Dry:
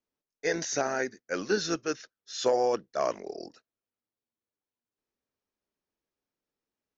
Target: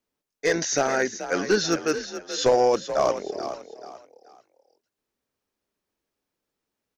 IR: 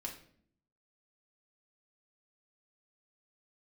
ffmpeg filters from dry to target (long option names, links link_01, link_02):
-filter_complex "[0:a]aeval=exprs='clip(val(0),-1,0.0891)':channel_layout=same,asplit=2[link_01][link_02];[link_02]asplit=3[link_03][link_04][link_05];[link_03]adelay=432,afreqshift=40,volume=-11dB[link_06];[link_04]adelay=864,afreqshift=80,volume=-21.2dB[link_07];[link_05]adelay=1296,afreqshift=120,volume=-31.3dB[link_08];[link_06][link_07][link_08]amix=inputs=3:normalize=0[link_09];[link_01][link_09]amix=inputs=2:normalize=0,volume=6.5dB"